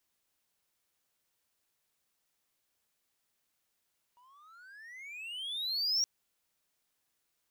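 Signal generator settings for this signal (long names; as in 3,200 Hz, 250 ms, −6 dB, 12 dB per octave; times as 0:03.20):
pitch glide with a swell triangle, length 1.87 s, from 951 Hz, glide +31 semitones, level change +34.5 dB, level −23.5 dB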